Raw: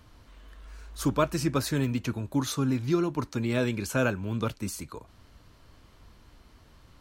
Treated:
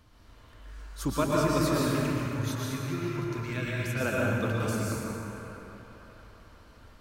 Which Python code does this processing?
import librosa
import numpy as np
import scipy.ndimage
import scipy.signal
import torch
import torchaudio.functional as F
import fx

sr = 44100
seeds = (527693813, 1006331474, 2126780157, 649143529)

y = fx.graphic_eq(x, sr, hz=(250, 500, 1000, 2000, 4000, 8000), db=(-10, -7, -8, 5, -4, -4), at=(1.91, 4.01))
y = fx.echo_wet_bandpass(y, sr, ms=646, feedback_pct=43, hz=1200.0, wet_db=-12.5)
y = fx.rev_plate(y, sr, seeds[0], rt60_s=2.9, hf_ratio=0.55, predelay_ms=100, drr_db=-5.0)
y = y * librosa.db_to_amplitude(-4.5)